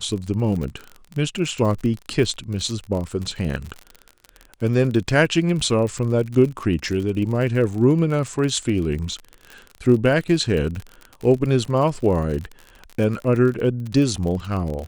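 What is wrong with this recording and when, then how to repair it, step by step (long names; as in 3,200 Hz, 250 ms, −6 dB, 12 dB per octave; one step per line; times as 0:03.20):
surface crackle 47 per second −27 dBFS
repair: click removal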